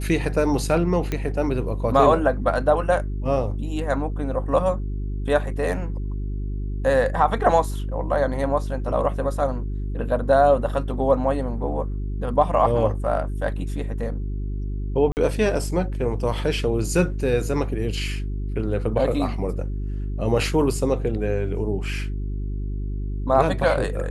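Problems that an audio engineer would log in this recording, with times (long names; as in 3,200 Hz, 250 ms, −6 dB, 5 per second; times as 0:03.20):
mains hum 50 Hz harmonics 8 −27 dBFS
0:01.12: click −12 dBFS
0:15.12–0:15.17: drop-out 49 ms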